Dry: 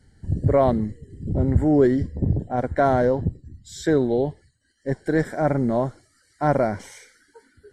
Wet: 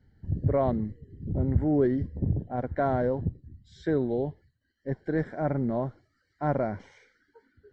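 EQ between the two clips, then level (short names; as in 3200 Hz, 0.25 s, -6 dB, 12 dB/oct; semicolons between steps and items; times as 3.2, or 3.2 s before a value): Gaussian blur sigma 2 samples; bell 120 Hz +3 dB 2.6 oct; -8.0 dB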